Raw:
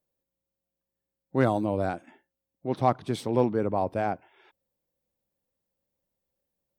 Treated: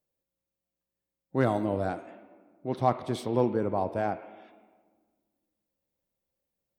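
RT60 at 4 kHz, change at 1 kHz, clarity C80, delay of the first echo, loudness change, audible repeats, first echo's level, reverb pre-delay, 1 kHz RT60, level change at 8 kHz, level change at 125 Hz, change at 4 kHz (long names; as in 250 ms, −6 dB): 0.95 s, −2.0 dB, 12.0 dB, no echo audible, −2.0 dB, no echo audible, no echo audible, 3 ms, 1.5 s, −2.0 dB, −2.0 dB, −2.0 dB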